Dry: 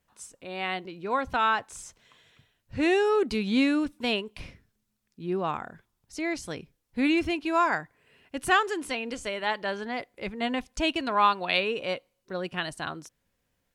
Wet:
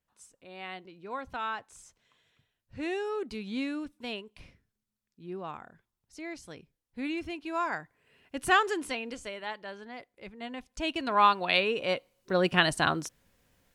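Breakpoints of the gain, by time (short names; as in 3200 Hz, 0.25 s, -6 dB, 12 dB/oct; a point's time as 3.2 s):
7.22 s -10 dB
8.7 s 0 dB
9.65 s -11 dB
10.54 s -11 dB
11.19 s 0 dB
11.8 s 0 dB
12.45 s +8 dB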